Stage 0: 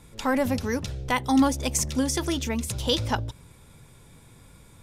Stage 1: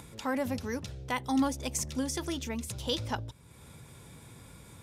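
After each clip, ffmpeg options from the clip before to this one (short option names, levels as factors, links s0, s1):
-af "highpass=59,acompressor=mode=upward:threshold=0.0224:ratio=2.5,volume=0.422"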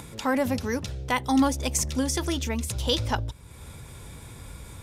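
-af "asubboost=boost=4.5:cutoff=72,volume=2.24"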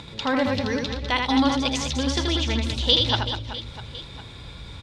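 -filter_complex "[0:a]lowpass=f=3900:t=q:w=3.3,asplit=2[s0][s1];[s1]aecho=0:1:80|200|380|650|1055:0.631|0.398|0.251|0.158|0.1[s2];[s0][s2]amix=inputs=2:normalize=0"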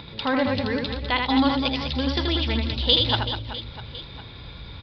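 -af "aresample=11025,aresample=44100"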